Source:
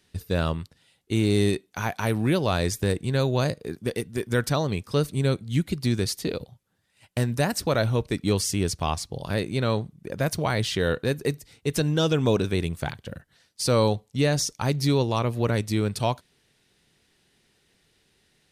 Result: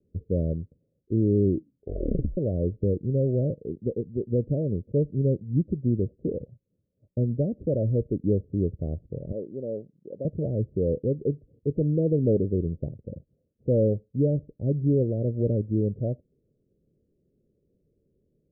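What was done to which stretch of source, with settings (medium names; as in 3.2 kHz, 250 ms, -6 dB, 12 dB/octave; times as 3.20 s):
1.43 s: tape stop 0.94 s
9.32–10.25 s: frequency weighting A
whole clip: steep low-pass 580 Hz 72 dB/octave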